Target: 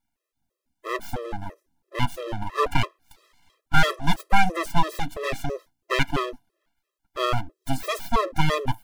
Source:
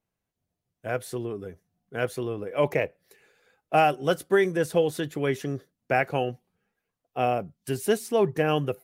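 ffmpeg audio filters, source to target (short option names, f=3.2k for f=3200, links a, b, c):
-af "aeval=exprs='abs(val(0))':c=same,afftfilt=real='re*gt(sin(2*PI*3*pts/sr)*(1-2*mod(floor(b*sr/1024/340),2)),0)':imag='im*gt(sin(2*PI*3*pts/sr)*(1-2*mod(floor(b*sr/1024/340),2)),0)':win_size=1024:overlap=0.75,volume=7.5dB"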